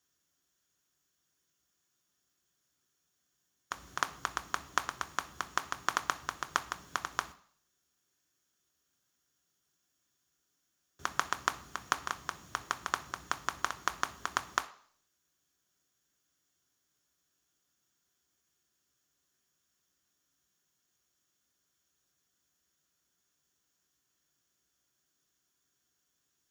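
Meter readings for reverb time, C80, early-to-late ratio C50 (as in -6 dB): 0.55 s, 20.0 dB, 16.5 dB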